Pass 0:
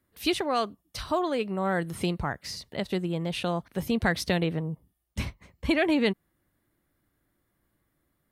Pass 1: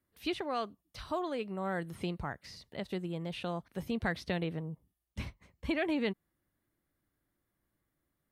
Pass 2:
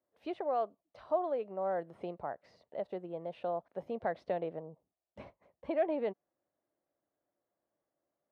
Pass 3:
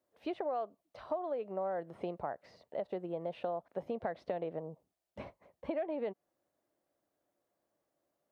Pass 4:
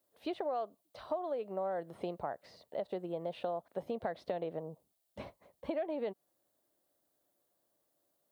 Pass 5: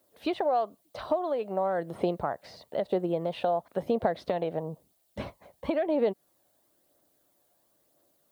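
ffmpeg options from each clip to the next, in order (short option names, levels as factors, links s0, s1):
-filter_complex "[0:a]acrossover=split=4300[s0][s1];[s1]acompressor=threshold=0.00398:ratio=4:attack=1:release=60[s2];[s0][s2]amix=inputs=2:normalize=0,volume=0.398"
-af "bandpass=f=620:t=q:w=2.8:csg=0,volume=2.24"
-af "acompressor=threshold=0.0141:ratio=6,volume=1.58"
-af "aexciter=amount=1.4:drive=8.1:freq=3300"
-af "aphaser=in_gain=1:out_gain=1:delay=1.4:decay=0.29:speed=1:type=triangular,volume=2.82"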